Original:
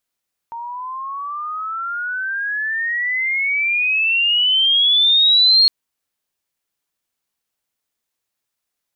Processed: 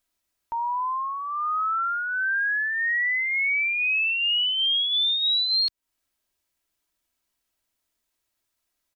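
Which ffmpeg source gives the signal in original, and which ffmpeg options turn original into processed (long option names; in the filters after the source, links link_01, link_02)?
-f lavfi -i "aevalsrc='pow(10,(-26.5+18*t/5.16)/20)*sin(2*PI*920*5.16/log(4300/920)*(exp(log(4300/920)*t/5.16)-1))':duration=5.16:sample_rate=44100"
-af "lowshelf=frequency=100:gain=8,aecho=1:1:3.1:0.42,acompressor=threshold=-23dB:ratio=5"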